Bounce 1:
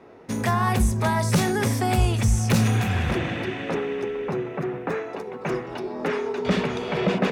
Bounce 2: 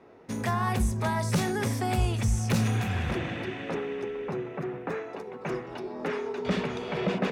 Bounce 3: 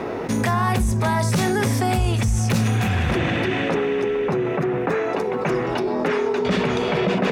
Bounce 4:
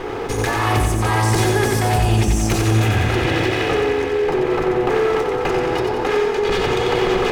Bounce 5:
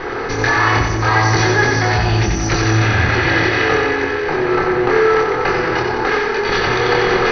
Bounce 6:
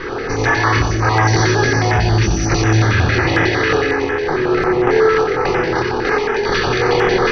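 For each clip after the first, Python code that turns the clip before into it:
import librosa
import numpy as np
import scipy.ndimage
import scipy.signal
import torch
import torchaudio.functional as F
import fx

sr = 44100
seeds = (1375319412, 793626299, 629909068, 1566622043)

y1 = fx.high_shelf(x, sr, hz=11000.0, db=-3.0)
y1 = y1 * librosa.db_to_amplitude(-5.5)
y2 = fx.env_flatten(y1, sr, amount_pct=70)
y2 = y2 * librosa.db_to_amplitude(3.5)
y3 = fx.lower_of_two(y2, sr, delay_ms=2.4)
y3 = fx.echo_feedback(y3, sr, ms=91, feedback_pct=56, wet_db=-4.5)
y3 = y3 * librosa.db_to_amplitude(2.5)
y4 = scipy.signal.sosfilt(scipy.signal.cheby1(6, 9, 6100.0, 'lowpass', fs=sr, output='sos'), y3)
y4 = fx.doubler(y4, sr, ms=25.0, db=-3.5)
y4 = y4 * librosa.db_to_amplitude(8.5)
y5 = fx.filter_held_notch(y4, sr, hz=11.0, low_hz=740.0, high_hz=4300.0)
y5 = y5 * librosa.db_to_amplitude(1.5)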